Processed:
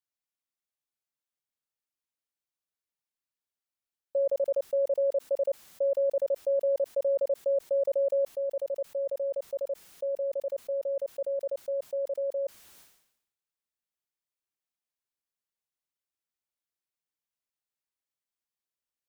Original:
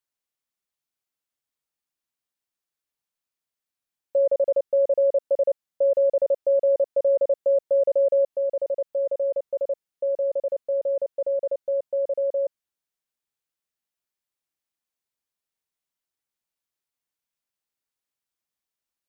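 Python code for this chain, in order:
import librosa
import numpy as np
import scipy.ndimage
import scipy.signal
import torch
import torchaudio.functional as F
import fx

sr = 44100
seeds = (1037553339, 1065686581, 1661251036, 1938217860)

y = fx.sustainer(x, sr, db_per_s=72.0)
y = F.gain(torch.from_numpy(y), -6.5).numpy()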